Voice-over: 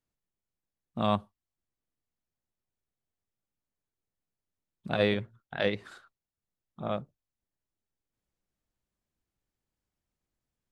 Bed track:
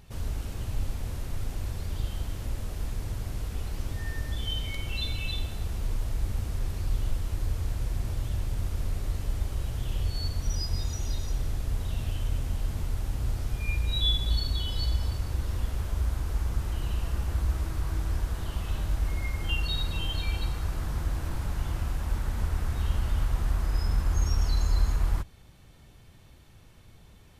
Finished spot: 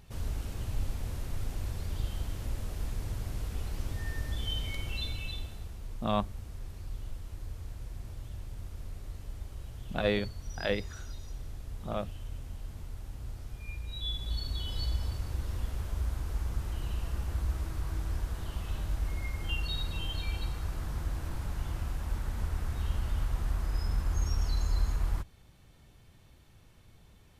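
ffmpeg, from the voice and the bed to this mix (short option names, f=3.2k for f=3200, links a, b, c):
-filter_complex "[0:a]adelay=5050,volume=-2.5dB[a];[1:a]volume=4.5dB,afade=t=out:st=4.76:d=1:silence=0.354813,afade=t=in:st=13.97:d=0.79:silence=0.446684[b];[a][b]amix=inputs=2:normalize=0"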